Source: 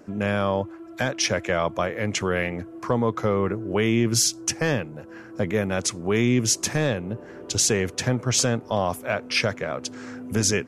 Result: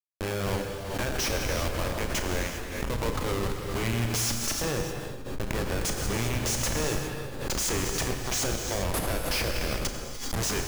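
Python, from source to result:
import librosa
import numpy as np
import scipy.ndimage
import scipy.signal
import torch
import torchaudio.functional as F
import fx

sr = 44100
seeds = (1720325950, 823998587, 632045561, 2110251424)

y = fx.highpass(x, sr, hz=110.0, slope=6)
y = fx.riaa(y, sr, side='recording')
y = fx.spec_gate(y, sr, threshold_db=-30, keep='strong')
y = fx.dynamic_eq(y, sr, hz=270.0, q=2.0, threshold_db=-45.0, ratio=4.0, max_db=-8)
y = fx.schmitt(y, sr, flips_db=-24.0)
y = fx.doubler(y, sr, ms=35.0, db=-12)
y = y + 10.0 ** (-18.0 / 20.0) * np.pad(y, (int(129 * sr / 1000.0), 0))[:len(y)]
y = fx.rev_gated(y, sr, seeds[0], gate_ms=430, shape='flat', drr_db=3.0)
y = fx.pre_swell(y, sr, db_per_s=51.0)
y = y * 10.0 ** (-7.0 / 20.0)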